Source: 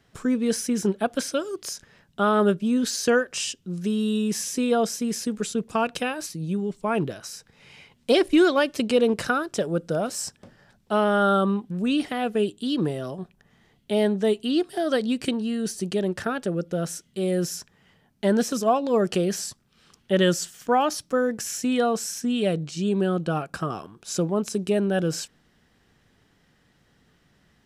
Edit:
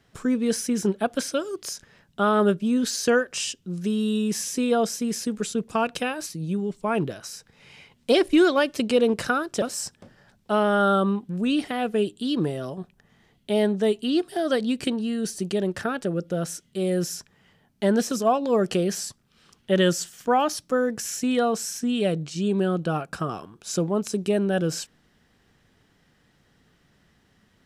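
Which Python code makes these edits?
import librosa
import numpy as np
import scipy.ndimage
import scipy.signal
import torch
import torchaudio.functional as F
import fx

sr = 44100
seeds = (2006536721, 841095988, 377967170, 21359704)

y = fx.edit(x, sr, fx.cut(start_s=9.62, length_s=0.41), tone=tone)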